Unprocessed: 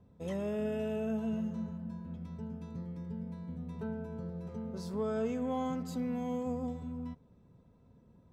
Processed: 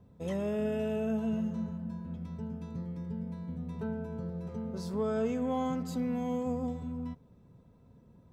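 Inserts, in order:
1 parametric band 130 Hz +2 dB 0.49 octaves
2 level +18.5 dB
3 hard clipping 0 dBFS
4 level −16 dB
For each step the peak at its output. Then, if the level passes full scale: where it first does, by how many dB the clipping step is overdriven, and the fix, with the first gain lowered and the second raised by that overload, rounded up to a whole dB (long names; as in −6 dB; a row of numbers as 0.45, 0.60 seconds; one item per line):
−24.5, −6.0, −6.0, −22.0 dBFS
no step passes full scale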